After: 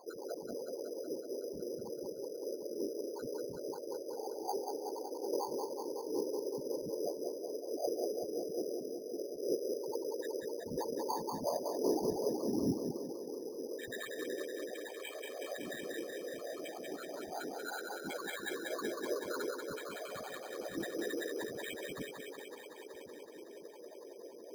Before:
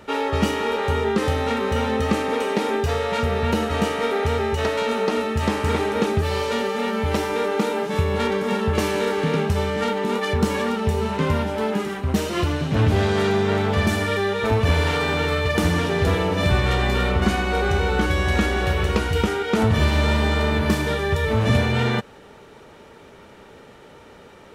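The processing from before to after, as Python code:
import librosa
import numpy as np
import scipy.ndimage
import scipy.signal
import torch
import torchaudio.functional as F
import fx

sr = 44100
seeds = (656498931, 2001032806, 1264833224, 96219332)

y = scipy.signal.sosfilt(scipy.signal.cheby1(5, 1.0, [240.0, 6000.0], 'bandpass', fs=sr, output='sos'), x)
y = fx.hum_notches(y, sr, base_hz=50, count=9)
y = fx.over_compress(y, sr, threshold_db=-30.0, ratio=-0.5)
y = fx.spec_topn(y, sr, count=1)
y = fx.whisperise(y, sr, seeds[0])
y = fx.echo_thinned(y, sr, ms=187, feedback_pct=81, hz=340.0, wet_db=-4)
y = np.repeat(y[::8], 8)[:len(y)]
y = y * 10.0 ** (1.0 / 20.0)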